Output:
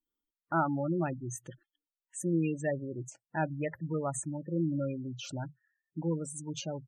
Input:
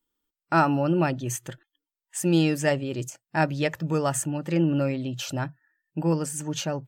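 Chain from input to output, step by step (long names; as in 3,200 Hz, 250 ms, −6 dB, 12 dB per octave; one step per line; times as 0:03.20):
gate on every frequency bin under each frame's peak −15 dB strong
level −8 dB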